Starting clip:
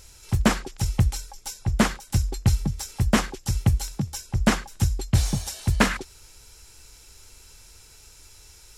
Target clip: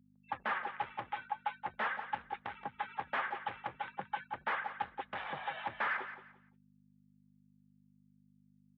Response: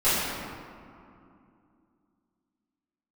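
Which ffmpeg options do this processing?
-af "agate=range=-33dB:threshold=-39dB:ratio=3:detection=peak,equalizer=f=1.9k:w=0.31:g=14.5,afftfilt=real='re*gte(hypot(re,im),0.0158)':imag='im*gte(hypot(re,im),0.0158)':win_size=1024:overlap=0.75,acompressor=threshold=-35dB:ratio=2,flanger=delay=1.1:depth=8.4:regen=56:speed=0.43:shape=triangular,aresample=8000,asoftclip=type=tanh:threshold=-26.5dB,aresample=44100,aeval=exprs='val(0)+0.00398*(sin(2*PI*50*n/s)+sin(2*PI*2*50*n/s)/2+sin(2*PI*3*50*n/s)/3+sin(2*PI*4*50*n/s)/4+sin(2*PI*5*50*n/s)/5)':c=same,volume=34.5dB,asoftclip=hard,volume=-34.5dB,highpass=330,equalizer=f=330:t=q:w=4:g=-5,equalizer=f=540:t=q:w=4:g=4,equalizer=f=850:t=q:w=4:g=9,equalizer=f=1.2k:t=q:w=4:g=5,equalizer=f=1.7k:t=q:w=4:g=5,equalizer=f=2.6k:t=q:w=4:g=-3,lowpass=f=2.9k:w=0.5412,lowpass=f=2.9k:w=1.3066,aecho=1:1:174|348|522:0.266|0.0639|0.0153"

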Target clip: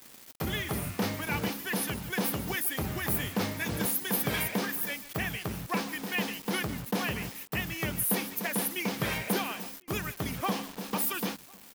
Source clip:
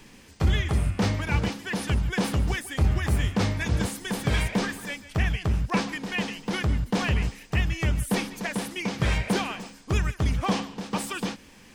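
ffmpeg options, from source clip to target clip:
-filter_complex "[0:a]highpass=170,alimiter=limit=-17.5dB:level=0:latency=1:release=436,aexciter=amount=12.7:drive=2.5:freq=11k,acrusher=bits=6:mix=0:aa=0.000001,asplit=2[a][b];[b]adelay=1050,volume=-26dB,highshelf=f=4k:g=-23.6[c];[a][c]amix=inputs=2:normalize=0,volume=-1.5dB"

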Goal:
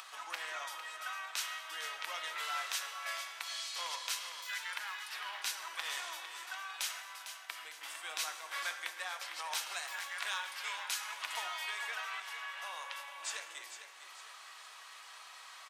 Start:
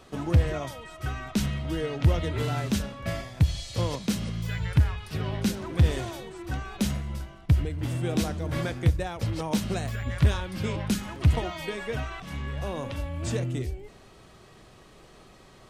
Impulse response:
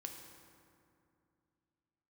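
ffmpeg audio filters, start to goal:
-filter_complex "[0:a]acompressor=mode=upward:threshold=-37dB:ratio=2.5,highpass=f=1k:w=0.5412,highpass=f=1k:w=1.3066,aecho=1:1:453|906|1359|1812|2265:0.316|0.136|0.0585|0.0251|0.0108,asplit=2[a][b];[1:a]atrim=start_sample=2205,afade=t=out:st=0.35:d=0.01,atrim=end_sample=15876[c];[b][c]afir=irnorm=-1:irlink=0,volume=6.5dB[d];[a][d]amix=inputs=2:normalize=0,volume=-8dB"

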